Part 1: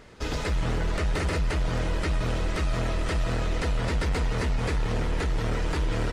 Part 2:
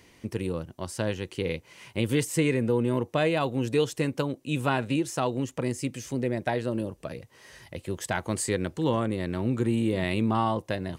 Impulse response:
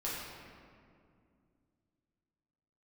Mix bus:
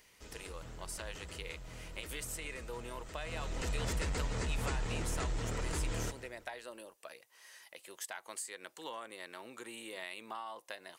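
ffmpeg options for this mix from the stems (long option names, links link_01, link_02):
-filter_complex "[0:a]lowpass=frequency=7700:width_type=q:width=3.7,volume=-10dB,afade=type=in:start_time=3.17:duration=0.56:silence=0.237137,asplit=2[link_01][link_02];[link_02]volume=-14.5dB[link_03];[1:a]highpass=850,highshelf=frequency=8500:gain=9,acompressor=threshold=-33dB:ratio=6,volume=-6.5dB[link_04];[link_03]aecho=0:1:168|336|504|672|840:1|0.37|0.137|0.0507|0.0187[link_05];[link_01][link_04][link_05]amix=inputs=3:normalize=0"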